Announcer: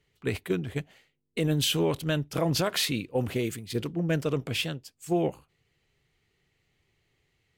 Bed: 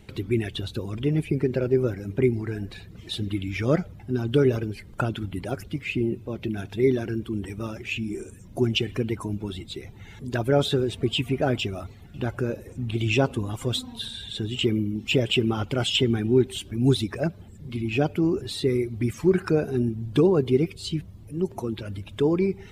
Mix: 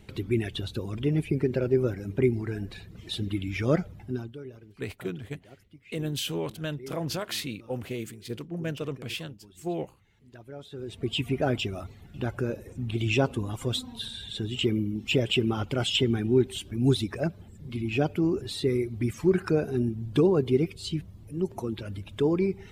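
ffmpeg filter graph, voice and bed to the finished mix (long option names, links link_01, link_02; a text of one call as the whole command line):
ffmpeg -i stem1.wav -i stem2.wav -filter_complex "[0:a]adelay=4550,volume=-5.5dB[link_01];[1:a]volume=17.5dB,afade=type=out:start_time=4.02:duration=0.32:silence=0.1,afade=type=in:start_time=10.71:duration=0.53:silence=0.105925[link_02];[link_01][link_02]amix=inputs=2:normalize=0" out.wav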